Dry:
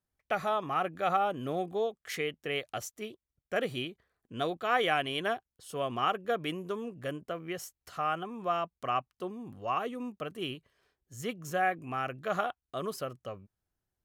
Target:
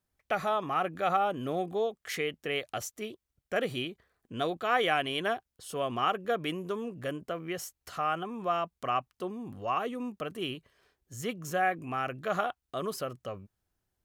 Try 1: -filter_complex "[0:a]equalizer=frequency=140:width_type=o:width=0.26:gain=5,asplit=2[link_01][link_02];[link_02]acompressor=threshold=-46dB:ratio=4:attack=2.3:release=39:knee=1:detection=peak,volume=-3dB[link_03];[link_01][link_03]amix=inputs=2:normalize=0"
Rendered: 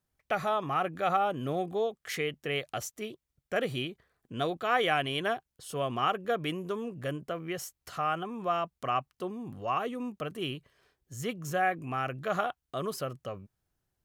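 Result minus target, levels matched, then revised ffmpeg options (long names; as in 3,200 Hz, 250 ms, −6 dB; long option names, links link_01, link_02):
125 Hz band +3.5 dB
-filter_complex "[0:a]equalizer=frequency=140:width_type=o:width=0.26:gain=-2.5,asplit=2[link_01][link_02];[link_02]acompressor=threshold=-46dB:ratio=4:attack=2.3:release=39:knee=1:detection=peak,volume=-3dB[link_03];[link_01][link_03]amix=inputs=2:normalize=0"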